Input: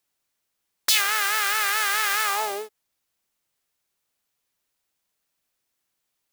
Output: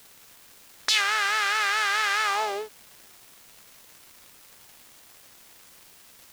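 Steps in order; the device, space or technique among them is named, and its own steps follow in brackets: 78 rpm shellac record (BPF 130–5500 Hz; crackle 320/s -40 dBFS; white noise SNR 23 dB)

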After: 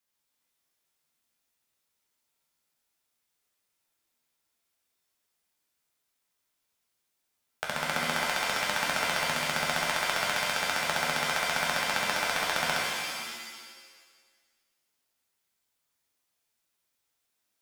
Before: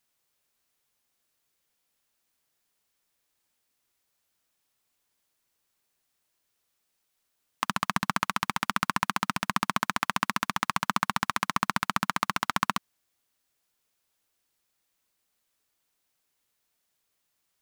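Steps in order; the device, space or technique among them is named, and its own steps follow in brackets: alien voice (ring modulator 390 Hz; flange 0.58 Hz, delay 9.6 ms, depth 3.7 ms, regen +49%); shimmer reverb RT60 1.5 s, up +7 st, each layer -2 dB, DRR -1.5 dB

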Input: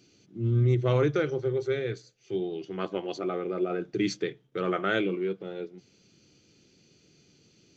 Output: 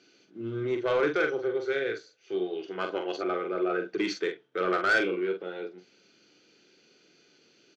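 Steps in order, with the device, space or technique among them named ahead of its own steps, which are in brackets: intercom (BPF 370–4500 Hz; bell 1500 Hz +8 dB 0.25 oct; soft clip -22 dBFS, distortion -14 dB; doubler 44 ms -6.5 dB); gain +3 dB

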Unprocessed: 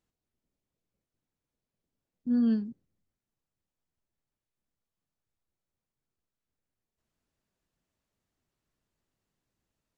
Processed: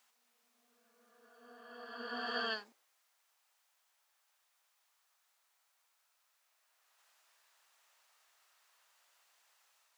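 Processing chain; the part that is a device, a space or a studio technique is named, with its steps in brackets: ghost voice (reverse; reverb RT60 2.4 s, pre-delay 67 ms, DRR -0.5 dB; reverse; HPF 790 Hz 24 dB/oct); gain +14.5 dB

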